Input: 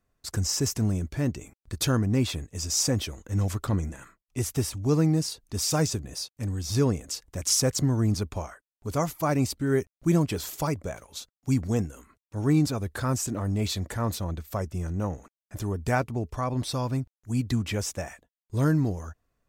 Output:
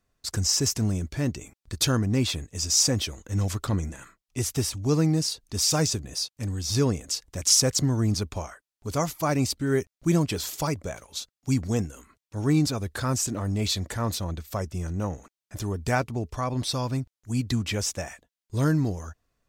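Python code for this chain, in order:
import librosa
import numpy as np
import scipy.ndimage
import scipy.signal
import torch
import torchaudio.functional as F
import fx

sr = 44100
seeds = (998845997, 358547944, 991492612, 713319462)

y = fx.peak_eq(x, sr, hz=4700.0, db=5.5, octaves=1.9)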